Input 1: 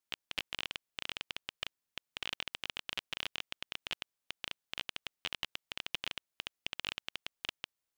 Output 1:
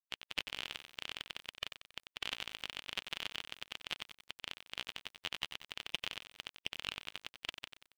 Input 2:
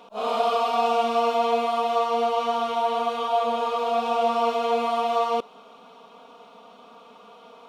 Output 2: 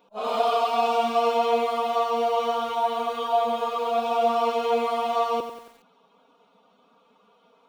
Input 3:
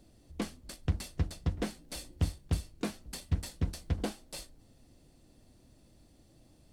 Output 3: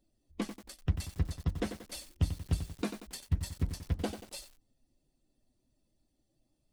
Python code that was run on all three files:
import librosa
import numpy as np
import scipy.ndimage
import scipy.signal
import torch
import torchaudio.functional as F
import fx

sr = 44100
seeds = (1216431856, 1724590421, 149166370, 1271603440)

y = fx.bin_expand(x, sr, power=1.5)
y = fx.echo_crushed(y, sr, ms=92, feedback_pct=55, bits=8, wet_db=-9.0)
y = y * librosa.db_to_amplitude(1.5)